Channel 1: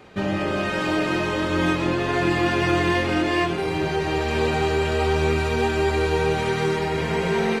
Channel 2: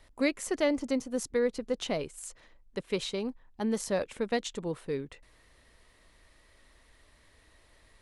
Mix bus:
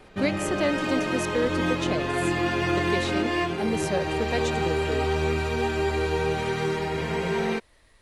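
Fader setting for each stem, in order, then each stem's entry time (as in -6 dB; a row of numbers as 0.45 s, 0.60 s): -4.0 dB, +1.5 dB; 0.00 s, 0.00 s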